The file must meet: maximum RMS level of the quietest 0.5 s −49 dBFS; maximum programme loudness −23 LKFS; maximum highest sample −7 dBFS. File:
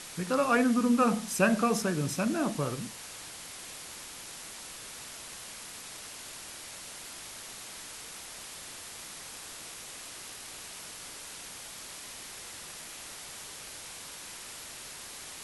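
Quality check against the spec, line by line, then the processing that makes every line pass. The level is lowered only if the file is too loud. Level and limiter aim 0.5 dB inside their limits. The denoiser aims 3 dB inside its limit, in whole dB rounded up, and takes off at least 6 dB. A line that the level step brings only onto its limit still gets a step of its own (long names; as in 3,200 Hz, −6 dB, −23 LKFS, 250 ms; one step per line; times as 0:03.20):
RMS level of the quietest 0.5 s −45 dBFS: out of spec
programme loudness −34.5 LKFS: in spec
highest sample −11.5 dBFS: in spec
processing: broadband denoise 7 dB, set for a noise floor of −45 dBFS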